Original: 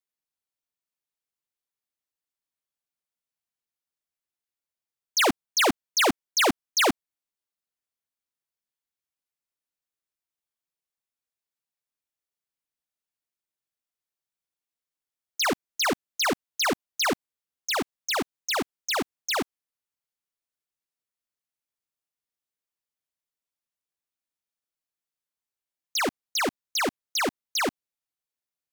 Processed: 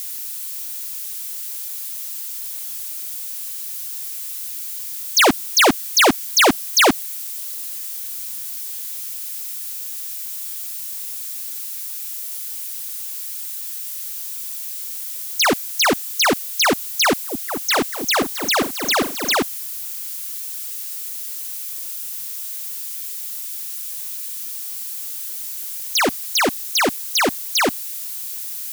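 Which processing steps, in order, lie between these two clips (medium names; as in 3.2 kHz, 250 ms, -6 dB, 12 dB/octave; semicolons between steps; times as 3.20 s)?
zero-crossing glitches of -32 dBFS; 17.04–19.36 s: delay with an opening low-pass 221 ms, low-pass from 400 Hz, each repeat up 2 oct, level -6 dB; trim +8 dB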